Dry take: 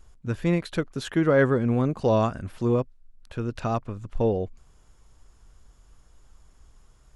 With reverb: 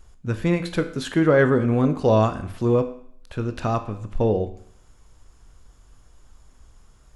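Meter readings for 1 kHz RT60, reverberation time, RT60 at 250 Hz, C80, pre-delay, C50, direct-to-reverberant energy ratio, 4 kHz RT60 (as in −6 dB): 0.65 s, 0.65 s, 0.60 s, 15.0 dB, 16 ms, 12.5 dB, 8.5 dB, 0.60 s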